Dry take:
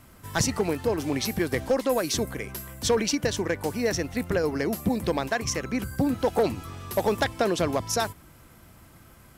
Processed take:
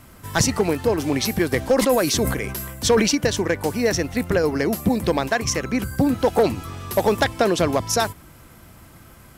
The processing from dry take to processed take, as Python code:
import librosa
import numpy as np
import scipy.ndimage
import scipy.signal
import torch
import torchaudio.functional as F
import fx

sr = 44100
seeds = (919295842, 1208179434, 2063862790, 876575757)

y = fx.sustainer(x, sr, db_per_s=45.0, at=(1.77, 3.1), fade=0.02)
y = F.gain(torch.from_numpy(y), 5.5).numpy()